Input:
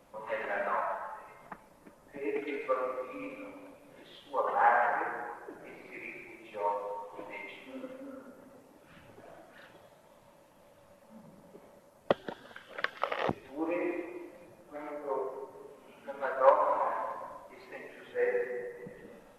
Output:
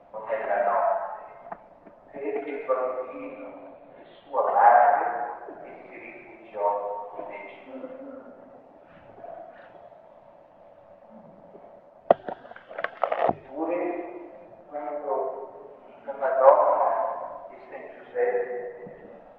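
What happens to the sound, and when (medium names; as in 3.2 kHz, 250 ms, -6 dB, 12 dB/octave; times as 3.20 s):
3.27–5.35 s: brick-wall FIR low-pass 4.6 kHz
whole clip: low-pass 2.3 kHz 12 dB/octave; peaking EQ 690 Hz +13.5 dB 0.45 oct; hum notches 50/100/150 Hz; trim +2.5 dB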